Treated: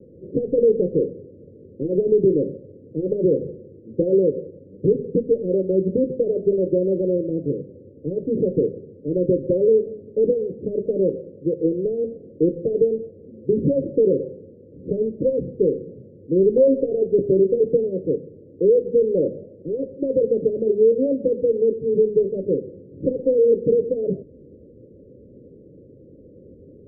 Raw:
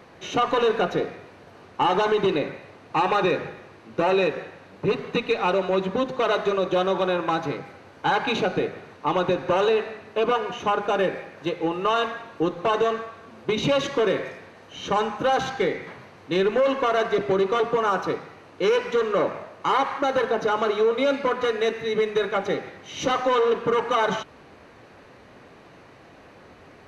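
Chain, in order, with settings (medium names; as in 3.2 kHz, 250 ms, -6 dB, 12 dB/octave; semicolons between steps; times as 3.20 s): steep low-pass 540 Hz 96 dB/octave; 16.57–17.06 s: comb 7.3 ms, depth 46%; trim +5.5 dB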